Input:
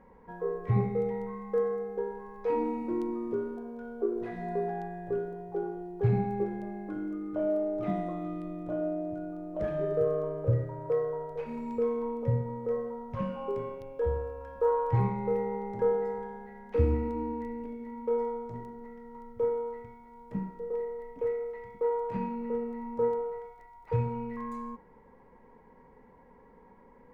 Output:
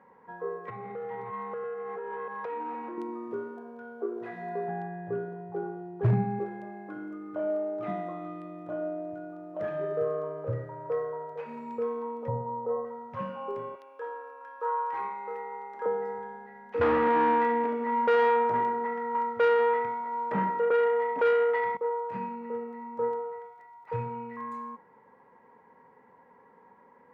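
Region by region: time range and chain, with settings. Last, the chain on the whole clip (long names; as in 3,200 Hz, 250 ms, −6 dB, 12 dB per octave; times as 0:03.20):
0:00.68–0:02.98: delay that plays each chunk backwards 320 ms, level −8.5 dB + downward compressor, threshold −38 dBFS + mid-hump overdrive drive 18 dB, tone 2,100 Hz, clips at −24 dBFS
0:04.68–0:06.39: bass and treble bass +11 dB, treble −7 dB + hard clipping −11 dBFS
0:12.28–0:12.85: low-pass with resonance 900 Hz, resonance Q 2.5 + floating-point word with a short mantissa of 8 bits
0:13.75–0:15.86: high-pass filter 290 Hz 24 dB per octave + low shelf with overshoot 790 Hz −6 dB, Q 1.5
0:16.81–0:21.77: mid-hump overdrive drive 28 dB, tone 1,700 Hz, clips at −13.5 dBFS + one half of a high-frequency compander decoder only
whole clip: high-pass filter 96 Hz 24 dB per octave; parametric band 1,400 Hz +11 dB 2.8 octaves; notch filter 2,200 Hz, Q 24; level −7 dB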